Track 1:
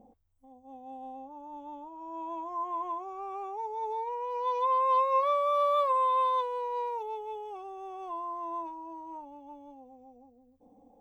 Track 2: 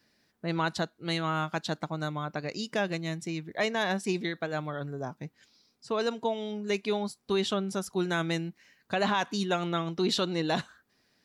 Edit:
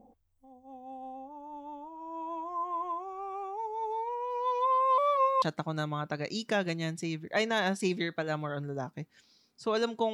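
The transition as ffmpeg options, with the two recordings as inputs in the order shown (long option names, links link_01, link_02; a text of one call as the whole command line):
ffmpeg -i cue0.wav -i cue1.wav -filter_complex "[0:a]apad=whole_dur=10.13,atrim=end=10.13,asplit=2[link_01][link_02];[link_01]atrim=end=4.982[link_03];[link_02]atrim=start=4.978:end=5.422,asetpts=PTS-STARTPTS,areverse[link_04];[1:a]atrim=start=1.658:end=6.37[link_05];[link_03][link_04]acrossfade=duration=0.004:curve1=hsin:curve2=hsin[link_06];[link_06][link_05]acrossfade=duration=0.004:curve1=hsin:curve2=hsin" out.wav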